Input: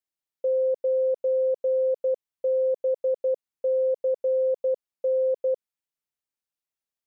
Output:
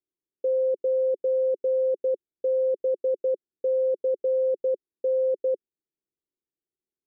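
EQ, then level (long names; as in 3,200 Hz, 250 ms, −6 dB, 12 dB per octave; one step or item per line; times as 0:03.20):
low-pass with resonance 370 Hz, resonance Q 4.5
0.0 dB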